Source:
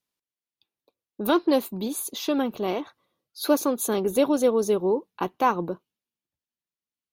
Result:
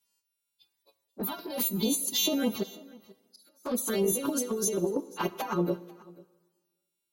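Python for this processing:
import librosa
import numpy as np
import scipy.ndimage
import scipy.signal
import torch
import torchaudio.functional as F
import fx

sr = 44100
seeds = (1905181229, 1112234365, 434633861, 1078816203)

y = fx.freq_snap(x, sr, grid_st=2)
y = fx.over_compress(y, sr, threshold_db=-27.0, ratio=-1.0)
y = fx.gate_flip(y, sr, shuts_db=-34.0, range_db=-31, at=(2.62, 3.65), fade=0.02)
y = fx.env_flanger(y, sr, rest_ms=9.4, full_db=-22.0)
y = y + 10.0 ** (-22.5 / 20.0) * np.pad(y, (int(490 * sr / 1000.0), 0))[:len(y)]
y = fx.rev_plate(y, sr, seeds[0], rt60_s=1.4, hf_ratio=0.9, predelay_ms=0, drr_db=16.5)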